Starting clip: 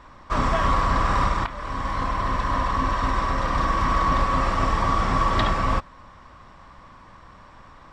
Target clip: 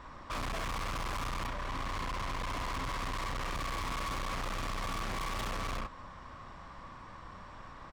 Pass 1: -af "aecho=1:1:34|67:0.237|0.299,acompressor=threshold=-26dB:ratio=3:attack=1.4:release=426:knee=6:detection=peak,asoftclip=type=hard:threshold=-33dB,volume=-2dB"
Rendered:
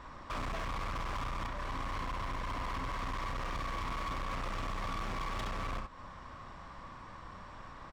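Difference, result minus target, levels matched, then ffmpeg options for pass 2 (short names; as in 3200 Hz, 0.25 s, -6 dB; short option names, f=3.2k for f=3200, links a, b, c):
compressor: peak gain reduction +11 dB
-af "aecho=1:1:34|67:0.237|0.299,asoftclip=type=hard:threshold=-33dB,volume=-2dB"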